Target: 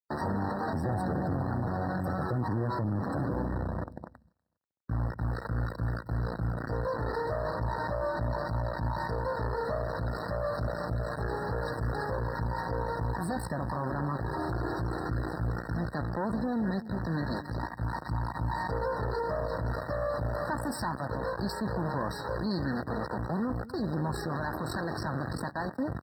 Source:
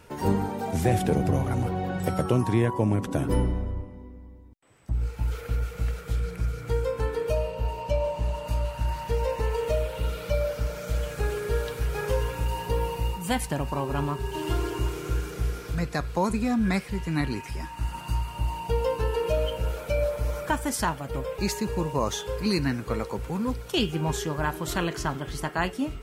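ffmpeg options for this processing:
-af "acrusher=bits=3:dc=4:mix=0:aa=0.000001,acontrast=73,asoftclip=type=tanh:threshold=0.224,highpass=f=68:w=0.5412,highpass=f=68:w=1.3066,highshelf=f=3700:g=-7,asoftclip=type=hard:threshold=0.133,equalizer=f=420:t=o:w=0.29:g=-6.5,aecho=1:1:244|488|732:0.119|0.044|0.0163,alimiter=limit=0.0708:level=0:latency=1:release=30,afftdn=nr=18:nf=-43,afftfilt=real='re*eq(mod(floor(b*sr/1024/1900),2),0)':imag='im*eq(mod(floor(b*sr/1024/1900),2),0)':win_size=1024:overlap=0.75"

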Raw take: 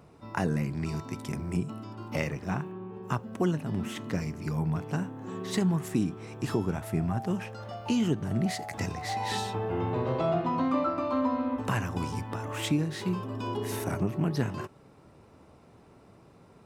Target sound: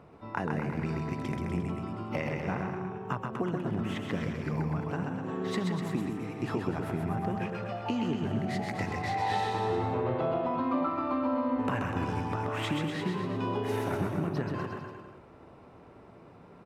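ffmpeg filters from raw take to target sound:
-af "bass=f=250:g=-4,treble=f=4000:g=-14,acompressor=threshold=0.0282:ratio=6,aecho=1:1:130|247|352.3|447.1|532.4:0.631|0.398|0.251|0.158|0.1,volume=1.33"

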